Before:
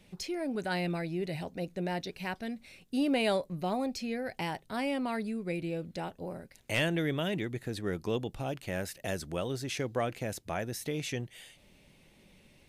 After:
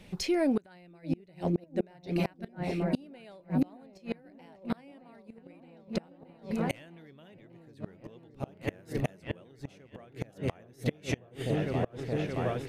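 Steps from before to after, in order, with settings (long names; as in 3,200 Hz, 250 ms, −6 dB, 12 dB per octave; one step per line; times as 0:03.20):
high-shelf EQ 4,300 Hz −6 dB
echo whose low-pass opens from repeat to repeat 622 ms, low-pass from 400 Hz, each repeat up 1 octave, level −3 dB
gate with flip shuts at −25 dBFS, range −30 dB
level +8 dB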